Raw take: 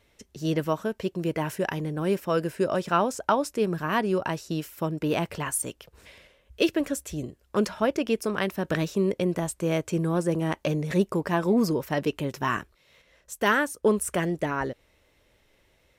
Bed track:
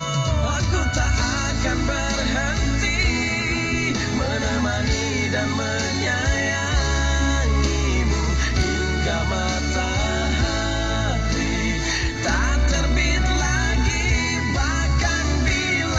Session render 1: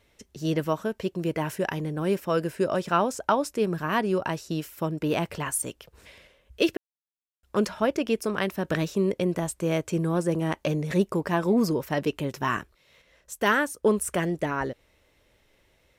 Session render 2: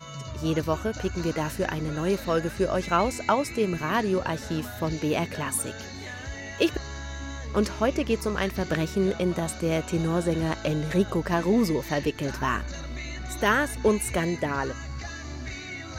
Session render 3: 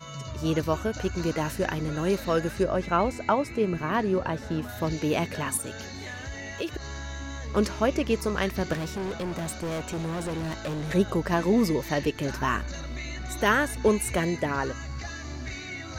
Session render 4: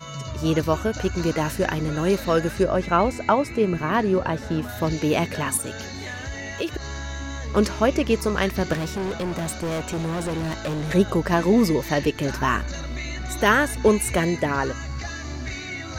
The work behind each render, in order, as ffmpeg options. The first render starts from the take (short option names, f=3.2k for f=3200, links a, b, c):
-filter_complex "[0:a]asplit=3[a][b][c];[a]atrim=end=6.77,asetpts=PTS-STARTPTS,afade=t=out:st=6.766:d=0.004:c=hsin[d];[b]atrim=start=6.77:end=7.43,asetpts=PTS-STARTPTS,volume=0[e];[c]atrim=start=7.43,asetpts=PTS-STARTPTS,afade=t=in:d=0.004:c=hsin[f];[d][e][f]concat=n=3:v=0:a=1"
-filter_complex "[1:a]volume=-16dB[a];[0:a][a]amix=inputs=2:normalize=0"
-filter_complex "[0:a]asettb=1/sr,asplit=3[a][b][c];[a]atrim=end=2.634[d];[b]atrim=start=2.63:end=4.69,asetpts=PTS-STARTPTS,afade=t=in:d=0.004:c=qsin,afade=t=out:st=2.056:d=0.004:c=qsin,highshelf=f=3.2k:g=-11[e];[c]atrim=start=4.686[f];[d][e]acrossfade=d=0.004:c1=hsin:c2=qsin[g];[g][f]acrossfade=d=0.004:c1=qsin:c2=hsin,asettb=1/sr,asplit=3[h][i][j];[h]atrim=end=5.574[k];[i]atrim=start=5.57:end=7.41,asetpts=PTS-STARTPTS,afade=t=in:d=0.004:c=qsin,afade=t=out:st=1.836:d=0.004:c=qsin,acompressor=threshold=-31dB:ratio=2.5:attack=3.2:release=140:knee=1:detection=peak[l];[j]atrim=start=7.406[m];[k][l]acrossfade=d=0.004:c1=hsin:c2=qsin[n];[n][m]acrossfade=d=0.004:c1=qsin:c2=hsin,asettb=1/sr,asplit=3[o][p][q];[o]atrim=end=8.734[r];[p]atrim=start=8.73:end=10.89,asetpts=PTS-STARTPTS,afade=t=in:d=0.004:c=qsin,afade=t=out:st=2.156:d=0.004:c=qsin,asoftclip=type=hard:threshold=-28.5dB[s];[q]atrim=start=10.886[t];[r][s]acrossfade=d=0.004:c1=hsin:c2=qsin[u];[u][t]acrossfade=d=0.004:c1=qsin:c2=hsin"
-af "volume=4.5dB"